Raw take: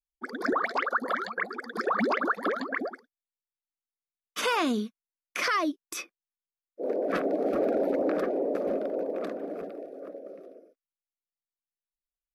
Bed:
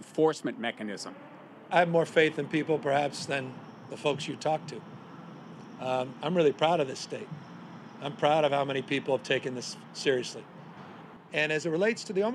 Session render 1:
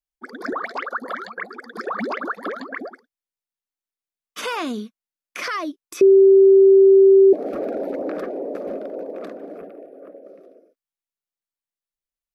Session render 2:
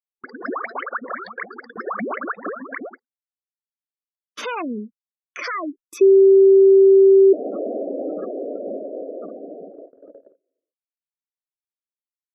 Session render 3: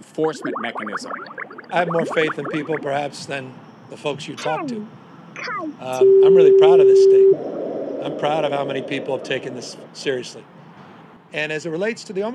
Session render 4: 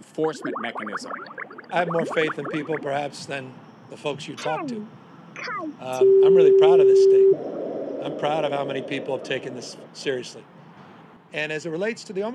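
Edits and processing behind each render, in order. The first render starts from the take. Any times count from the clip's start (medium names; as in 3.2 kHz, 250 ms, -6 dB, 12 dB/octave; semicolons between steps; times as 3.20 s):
6.01–7.33 s: bleep 388 Hz -7.5 dBFS; 9.58–10.23 s: high-order bell 5.4 kHz -9.5 dB 1.3 oct
spectral gate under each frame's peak -15 dB strong; gate -40 dBFS, range -32 dB
add bed +4 dB
trim -3.5 dB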